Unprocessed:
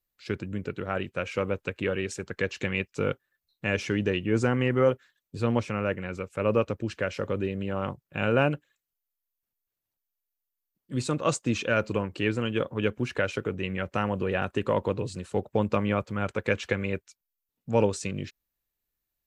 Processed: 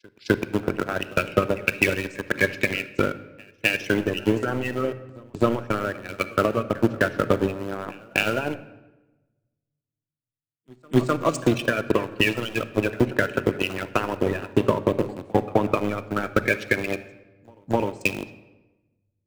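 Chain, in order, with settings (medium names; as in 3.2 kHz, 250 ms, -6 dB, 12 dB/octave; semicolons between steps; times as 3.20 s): coarse spectral quantiser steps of 30 dB; dynamic bell 2.9 kHz, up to +3 dB, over -44 dBFS, Q 1.4; in parallel at -4 dB: small samples zeroed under -27 dBFS; on the sum: peak limiter -15 dBFS, peak gain reduction 10 dB; transient shaper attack +12 dB, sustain -11 dB; bass shelf 200 Hz -4.5 dB; pre-echo 256 ms -17 dB; on a send at -10 dB: reverberation RT60 2.1 s, pre-delay 3 ms; on the sum: three bands expanded up and down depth 70%; trim -1 dB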